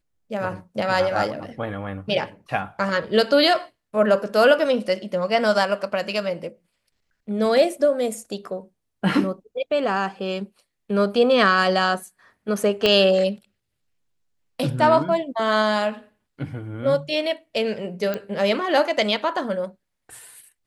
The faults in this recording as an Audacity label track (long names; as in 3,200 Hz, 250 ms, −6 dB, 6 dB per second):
12.860000	12.860000	click −6 dBFS
18.140000	18.140000	click −13 dBFS